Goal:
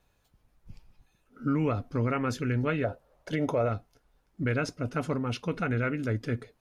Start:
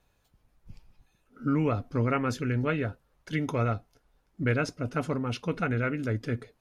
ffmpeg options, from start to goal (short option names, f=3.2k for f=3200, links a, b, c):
-filter_complex "[0:a]asettb=1/sr,asplit=3[a][b][c];[a]atrim=end=2.844[d];[b]atrim=start=2.84:end=3.69,asetpts=PTS-STARTPTS,afade=t=in:d=0.004:c=qsin,afade=t=out:st=0.846:d=0.004:c=qsin,equalizer=f=610:t=o:w=1:g=14.5[e];[c]atrim=start=3.686[f];[d][e]acrossfade=d=0.004:c1=hsin:c2=qsin[g];[g][f]acrossfade=d=0.004:c1=qsin:c2=hsin,alimiter=limit=-18.5dB:level=0:latency=1:release=55"